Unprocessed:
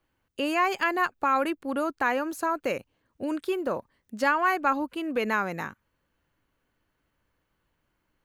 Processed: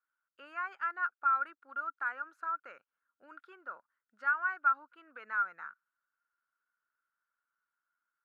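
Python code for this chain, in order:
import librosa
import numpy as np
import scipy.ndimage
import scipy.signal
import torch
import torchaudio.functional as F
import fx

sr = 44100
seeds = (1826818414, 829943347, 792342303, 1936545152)

y = fx.bandpass_q(x, sr, hz=1400.0, q=14.0)
y = F.gain(torch.from_numpy(y), 3.0).numpy()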